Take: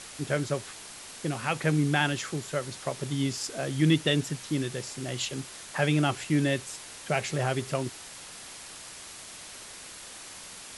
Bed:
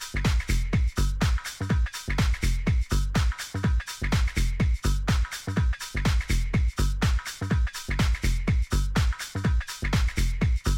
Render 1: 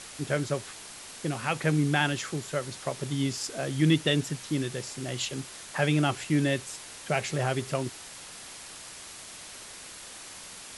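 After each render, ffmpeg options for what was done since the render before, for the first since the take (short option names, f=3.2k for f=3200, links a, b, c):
-af anull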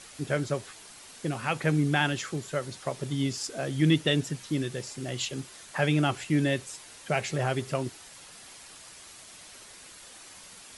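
-af "afftdn=nr=6:nf=-45"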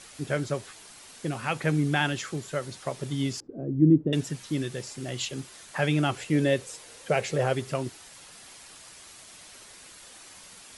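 -filter_complex "[0:a]asettb=1/sr,asplit=3[a][b][c];[a]atrim=end=3.404[d];[b]atrim=start=3.4:end=4.13,asetpts=PTS-STARTPTS,afade=t=in:d=0.004:c=qsin,afade=t=out:st=0.726:d=0.004:c=qsin,lowpass=f=320:t=q:w=1.9[e];[c]atrim=start=4.126[f];[d][e]acrossfade=d=0.004:c1=hsin:c2=qsin[g];[g][f]acrossfade=d=0.004:c1=qsin:c2=hsin,asettb=1/sr,asplit=3[h][i][j];[h]atrim=end=6.174[k];[i]atrim=start=6.17:end=7.53,asetpts=PTS-STARTPTS,afade=t=in:d=0.004:c=qsin,afade=t=out:st=1.356:d=0.004:c=qsin,equalizer=f=490:w=3.3:g=10.5[l];[j]atrim=start=7.526[m];[k][l]acrossfade=d=0.004:c1=hsin:c2=qsin[n];[n][m]acrossfade=d=0.004:c1=qsin:c2=hsin"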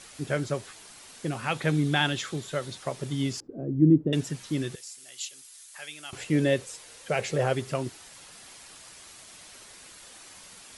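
-filter_complex "[0:a]asettb=1/sr,asplit=3[a][b][c];[a]atrim=end=1.504[d];[b]atrim=start=1.5:end=2.78,asetpts=PTS-STARTPTS,afade=t=in:d=0.004:c=qsin,afade=t=out:st=1.276:d=0.004:c=qsin,equalizer=f=3.6k:w=4.7:g=8[e];[c]atrim=start=2.776[f];[d][e]acrossfade=d=0.004:c1=hsin:c2=qsin[g];[g][f]acrossfade=d=0.004:c1=qsin:c2=hsin,asettb=1/sr,asplit=3[h][i][j];[h]atrim=end=4.754[k];[i]atrim=start=4.75:end=6.13,asetpts=PTS-STARTPTS,afade=t=in:d=0.004:c=qsin,afade=t=out:st=1.376:d=0.004:c=qsin,aderivative[l];[j]atrim=start=6.126[m];[k][l]acrossfade=d=0.004:c1=hsin:c2=qsin[n];[n][m]acrossfade=d=0.004:c1=qsin:c2=hsin,asettb=1/sr,asplit=3[o][p][q];[o]atrim=end=6.654[r];[p]atrim=start=6.65:end=7.19,asetpts=PTS-STARTPTS,afade=t=in:d=0.004:c=qsin,afade=t=out:st=0.536:d=0.004:c=qsin,equalizer=f=310:w=0.35:g=-4[s];[q]atrim=start=7.186[t];[r][s]acrossfade=d=0.004:c1=hsin:c2=qsin[u];[u][t]acrossfade=d=0.004:c1=qsin:c2=hsin"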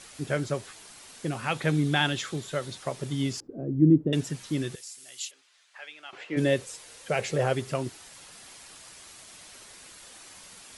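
-filter_complex "[0:a]asplit=3[a][b][c];[a]afade=t=out:st=5.3:d=0.02[d];[b]highpass=440,lowpass=2.8k,afade=t=in:st=5.3:d=0.02,afade=t=out:st=6.36:d=0.02[e];[c]afade=t=in:st=6.36:d=0.02[f];[d][e][f]amix=inputs=3:normalize=0"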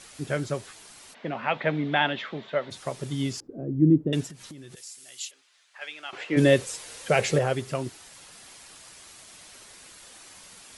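-filter_complex "[0:a]asplit=3[a][b][c];[a]afade=t=out:st=1.13:d=0.02[d];[b]highpass=210,equalizer=f=220:t=q:w=4:g=6,equalizer=f=340:t=q:w=4:g=-4,equalizer=f=630:t=q:w=4:g=8,equalizer=f=930:t=q:w=4:g=5,equalizer=f=2k:t=q:w=4:g=5,lowpass=f=3.5k:w=0.5412,lowpass=f=3.5k:w=1.3066,afade=t=in:st=1.13:d=0.02,afade=t=out:st=2.7:d=0.02[e];[c]afade=t=in:st=2.7:d=0.02[f];[d][e][f]amix=inputs=3:normalize=0,asettb=1/sr,asplit=3[g][h][i];[g]atrim=end=4.264[j];[h]atrim=start=4.26:end=4.77,asetpts=PTS-STARTPTS,afade=t=in:d=0.004:c=qsin,afade=t=out:st=0.506:d=0.004:c=qsin,acompressor=threshold=-39dB:ratio=20:attack=3.2:release=140:knee=1:detection=peak[k];[i]atrim=start=4.766[l];[j][k]acrossfade=d=0.004:c1=hsin:c2=qsin[m];[m][l]acrossfade=d=0.004:c1=qsin:c2=hsin,asettb=1/sr,asplit=3[n][o][p];[n]atrim=end=5.814[q];[o]atrim=start=5.81:end=7.39,asetpts=PTS-STARTPTS,afade=t=in:d=0.004:c=qsin,afade=t=out:st=1.576:d=0.004:c=qsin,acontrast=46[r];[p]atrim=start=7.386[s];[q][r]acrossfade=d=0.004:c1=hsin:c2=qsin[t];[t][s]acrossfade=d=0.004:c1=qsin:c2=hsin"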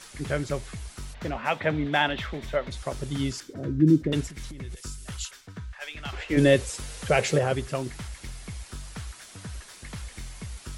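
-filter_complex "[1:a]volume=-14.5dB[a];[0:a][a]amix=inputs=2:normalize=0"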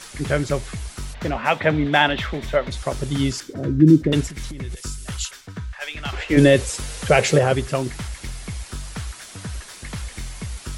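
-af "volume=7dB,alimiter=limit=-3dB:level=0:latency=1"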